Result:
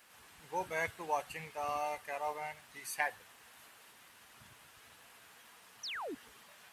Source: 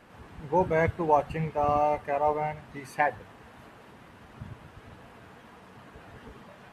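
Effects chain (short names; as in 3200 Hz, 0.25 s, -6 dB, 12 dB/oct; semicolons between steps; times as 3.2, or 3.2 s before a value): pre-emphasis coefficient 0.97; painted sound fall, 5.83–6.15, 240–6400 Hz -48 dBFS; gain +7 dB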